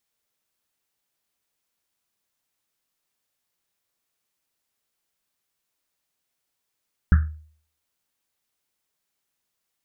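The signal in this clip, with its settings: Risset drum, pitch 77 Hz, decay 0.51 s, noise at 1500 Hz, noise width 470 Hz, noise 10%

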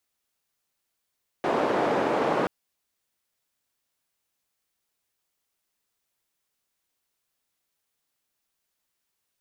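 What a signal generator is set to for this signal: noise band 300–660 Hz, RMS -24.5 dBFS 1.03 s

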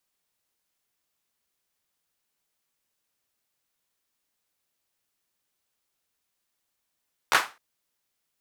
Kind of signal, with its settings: hand clap length 0.26 s, bursts 3, apart 13 ms, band 1200 Hz, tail 0.28 s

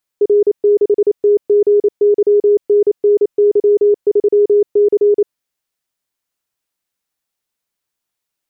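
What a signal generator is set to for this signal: Morse "R6TGYNNY3C" 28 wpm 412 Hz -7 dBFS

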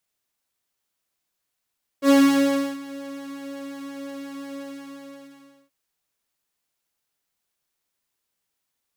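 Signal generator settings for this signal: synth patch with pulse-width modulation C#4, interval +12 st, detune 6 cents, oscillator 2 level -0.5 dB, sub -21 dB, filter highpass, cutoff 170 Hz, Q 2.6, filter envelope 1 oct, attack 75 ms, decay 0.68 s, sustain -21 dB, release 1.14 s, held 2.54 s, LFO 5.6 Hz, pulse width 29%, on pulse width 7%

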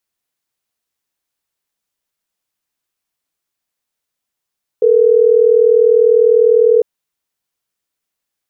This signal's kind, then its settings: call progress tone ringback tone, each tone -9.5 dBFS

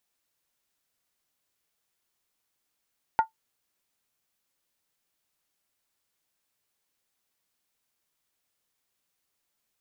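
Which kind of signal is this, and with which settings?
skin hit, lowest mode 890 Hz, decay 0.12 s, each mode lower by 11 dB, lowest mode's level -13 dB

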